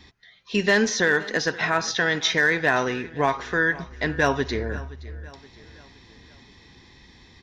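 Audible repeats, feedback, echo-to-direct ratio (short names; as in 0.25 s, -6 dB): 3, 48%, -18.5 dB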